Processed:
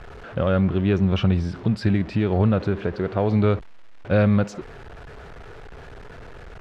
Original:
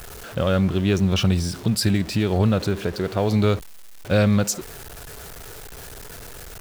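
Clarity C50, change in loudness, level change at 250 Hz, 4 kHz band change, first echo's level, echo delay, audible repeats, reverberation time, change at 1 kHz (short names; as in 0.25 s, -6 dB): none, 0.0 dB, 0.0 dB, -9.0 dB, none, none, none, none, -0.5 dB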